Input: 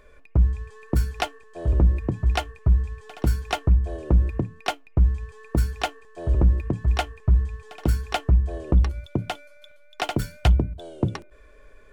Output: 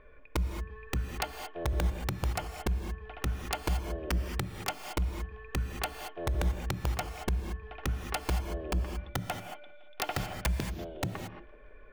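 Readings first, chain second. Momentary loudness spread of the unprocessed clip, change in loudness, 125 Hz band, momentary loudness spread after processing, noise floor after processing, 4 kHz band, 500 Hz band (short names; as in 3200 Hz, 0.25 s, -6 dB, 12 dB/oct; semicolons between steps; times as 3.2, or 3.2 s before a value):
9 LU, -10.5 dB, -12.0 dB, 6 LU, -51 dBFS, -5.5 dB, -6.5 dB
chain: dynamic EQ 180 Hz, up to +4 dB, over -38 dBFS, Q 3.5; LPF 2900 Hz 24 dB/oct; compressor 5:1, threshold -25 dBFS, peak gain reduction 11 dB; thinning echo 0.17 s, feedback 63%, high-pass 260 Hz, level -21.5 dB; wrapped overs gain 19.5 dB; non-linear reverb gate 0.25 s rising, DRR 6 dB; gain -3 dB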